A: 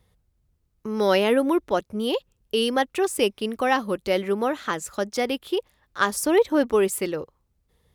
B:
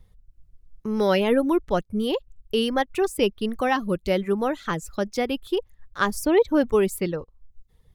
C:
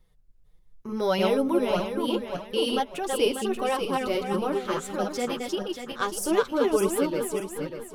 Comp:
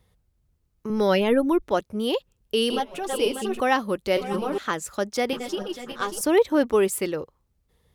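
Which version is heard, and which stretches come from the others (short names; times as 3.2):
A
0.9–1.62 from B
2.7–3.6 from C
4.17–4.58 from C
5.33–6.21 from C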